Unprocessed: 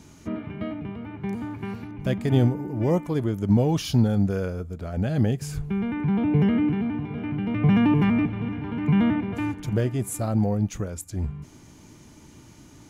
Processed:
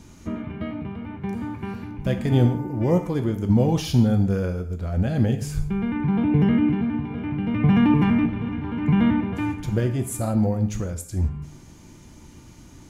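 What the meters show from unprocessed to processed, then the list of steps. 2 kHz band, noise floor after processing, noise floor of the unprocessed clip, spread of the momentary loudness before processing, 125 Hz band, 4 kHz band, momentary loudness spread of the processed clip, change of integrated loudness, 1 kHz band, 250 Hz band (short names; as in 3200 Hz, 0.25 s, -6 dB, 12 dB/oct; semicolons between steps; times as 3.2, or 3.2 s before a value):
+1.0 dB, -46 dBFS, -50 dBFS, 12 LU, +2.0 dB, +1.0 dB, 13 LU, +2.0 dB, +2.0 dB, +2.0 dB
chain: low shelf 66 Hz +10.5 dB; non-linear reverb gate 0.2 s falling, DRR 6 dB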